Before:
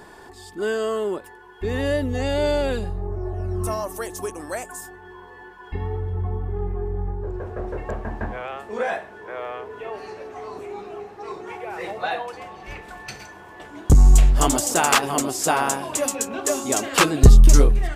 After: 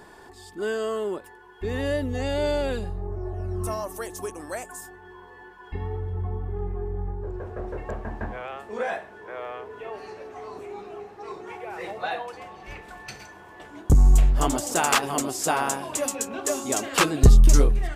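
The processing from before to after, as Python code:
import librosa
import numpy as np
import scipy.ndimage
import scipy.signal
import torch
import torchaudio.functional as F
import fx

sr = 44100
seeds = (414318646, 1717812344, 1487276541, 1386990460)

y = fx.peak_eq(x, sr, hz=fx.line((13.81, 3200.0), (14.71, 13000.0)), db=-5.5, octaves=2.5, at=(13.81, 14.71), fade=0.02)
y = y * librosa.db_to_amplitude(-3.5)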